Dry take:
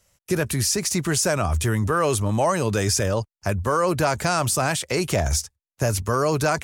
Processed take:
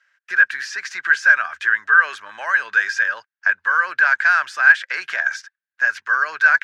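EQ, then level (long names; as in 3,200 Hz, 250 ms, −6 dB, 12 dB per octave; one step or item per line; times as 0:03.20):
high-pass with resonance 1,600 Hz, resonance Q 15
high-frequency loss of the air 220 metres
+1.0 dB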